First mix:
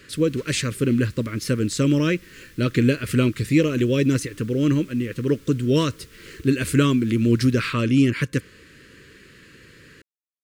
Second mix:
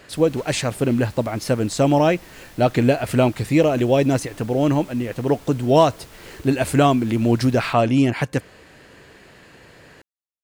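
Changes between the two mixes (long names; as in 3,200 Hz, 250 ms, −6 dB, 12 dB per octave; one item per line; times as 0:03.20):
background +5.0 dB
master: remove Butterworth band-reject 760 Hz, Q 0.92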